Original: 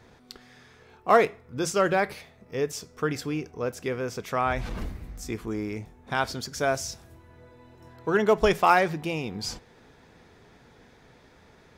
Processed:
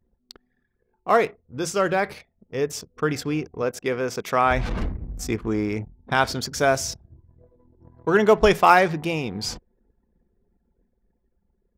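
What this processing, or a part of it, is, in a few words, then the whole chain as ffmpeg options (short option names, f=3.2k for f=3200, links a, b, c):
voice memo with heavy noise removal: -filter_complex "[0:a]asettb=1/sr,asplit=3[a][b][c];[a]atrim=end=3.624[d];[b]atrim=start=3.62:end=4.51,asetpts=PTS-STARTPTS,afade=t=in:d=0.004:c=qsin,afade=t=out:st=0.886:d=0.004:c=qsin,highpass=f=190:p=1[e];[c]atrim=start=4.506[f];[d][e]acrossfade=d=0.004:c1=hsin:c2=qsin[g];[g][f]acrossfade=d=0.004:c1=qsin:c2=hsin,anlmdn=0.1,dynaudnorm=f=380:g=13:m=8.5dB"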